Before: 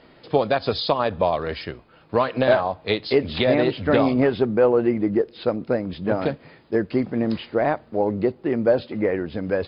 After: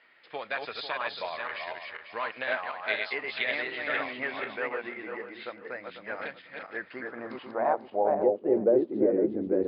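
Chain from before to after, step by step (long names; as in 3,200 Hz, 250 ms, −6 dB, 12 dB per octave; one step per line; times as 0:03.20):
feedback delay that plays each chunk backwards 247 ms, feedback 46%, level −3 dB
band-pass filter sweep 2,000 Hz → 340 Hz, 0:06.66–0:08.92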